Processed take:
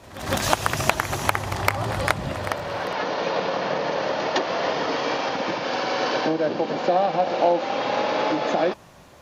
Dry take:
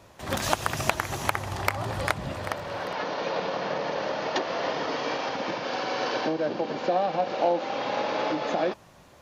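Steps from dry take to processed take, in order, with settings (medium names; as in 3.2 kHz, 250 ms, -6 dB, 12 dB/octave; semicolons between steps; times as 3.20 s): pre-echo 160 ms -14 dB; trim +4.5 dB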